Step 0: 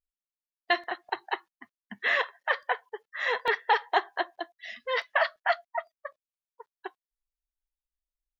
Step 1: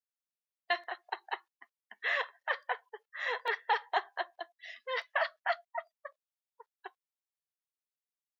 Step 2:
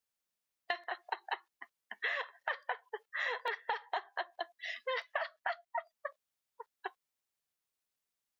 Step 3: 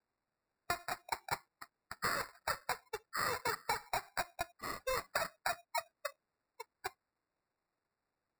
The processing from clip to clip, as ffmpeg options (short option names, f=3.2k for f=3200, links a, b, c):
-af "highpass=f=440:w=0.5412,highpass=f=440:w=1.3066,volume=-6dB"
-af "acompressor=threshold=-39dB:ratio=10,volume=6dB"
-af "acrusher=samples=14:mix=1:aa=0.000001"